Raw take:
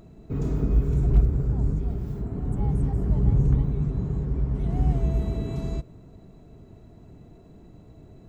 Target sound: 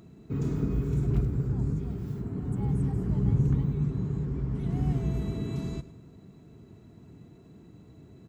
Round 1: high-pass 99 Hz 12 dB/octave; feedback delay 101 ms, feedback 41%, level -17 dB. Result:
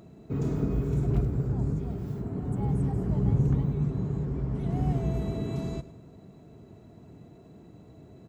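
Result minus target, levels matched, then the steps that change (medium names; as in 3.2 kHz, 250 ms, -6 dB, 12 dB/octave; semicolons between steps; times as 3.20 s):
500 Hz band +3.0 dB
add after high-pass: peaking EQ 640 Hz -8 dB 0.95 oct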